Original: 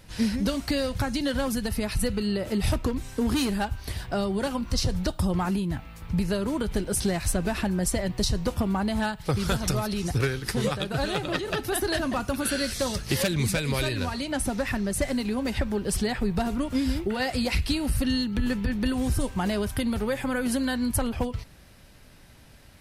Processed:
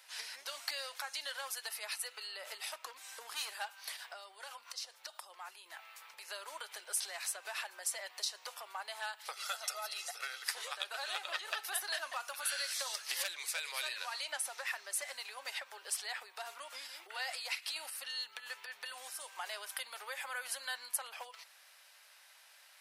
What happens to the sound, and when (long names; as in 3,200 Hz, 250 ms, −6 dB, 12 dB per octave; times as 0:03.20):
0:03.93–0:05.66: downward compressor 8 to 1, threshold −33 dBFS
0:09.33–0:10.44: comb filter 1.5 ms
0:16.86–0:17.76: downward compressor 3 to 1, threshold −28 dBFS
whole clip: downward compressor, threshold −27 dBFS; Bessel high-pass filter 1,100 Hz, order 6; level −2 dB